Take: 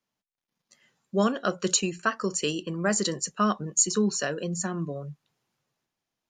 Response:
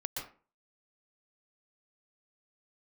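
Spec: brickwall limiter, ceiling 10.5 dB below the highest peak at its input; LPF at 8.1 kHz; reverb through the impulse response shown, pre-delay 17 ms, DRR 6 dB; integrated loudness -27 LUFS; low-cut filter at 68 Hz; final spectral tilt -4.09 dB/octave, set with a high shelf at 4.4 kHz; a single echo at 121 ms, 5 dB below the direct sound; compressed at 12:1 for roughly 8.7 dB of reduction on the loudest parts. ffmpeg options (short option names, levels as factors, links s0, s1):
-filter_complex "[0:a]highpass=68,lowpass=8100,highshelf=f=4400:g=3.5,acompressor=threshold=0.0501:ratio=12,alimiter=level_in=1.06:limit=0.0631:level=0:latency=1,volume=0.944,aecho=1:1:121:0.562,asplit=2[s0][s1];[1:a]atrim=start_sample=2205,adelay=17[s2];[s1][s2]afir=irnorm=-1:irlink=0,volume=0.422[s3];[s0][s3]amix=inputs=2:normalize=0,volume=2"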